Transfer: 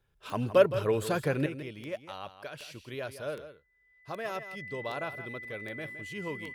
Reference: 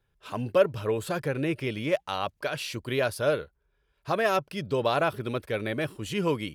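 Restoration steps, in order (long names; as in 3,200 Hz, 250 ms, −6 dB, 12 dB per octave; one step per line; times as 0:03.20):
click removal
notch filter 2,000 Hz, Q 30
echo removal 165 ms −12 dB
level 0 dB, from 0:01.46 +11.5 dB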